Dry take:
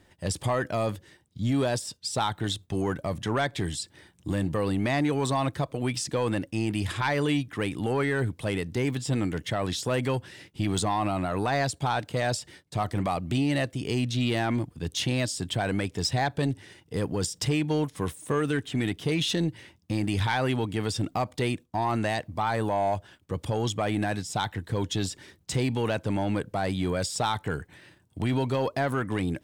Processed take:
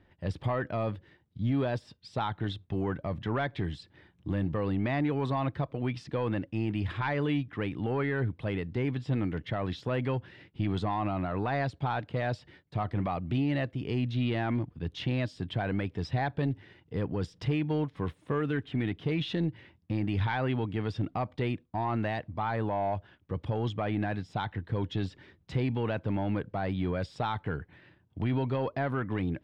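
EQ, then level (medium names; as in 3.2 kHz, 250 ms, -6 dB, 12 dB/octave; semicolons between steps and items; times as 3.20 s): distance through air 350 m; peaking EQ 550 Hz -2.5 dB 2.7 oct; -1.0 dB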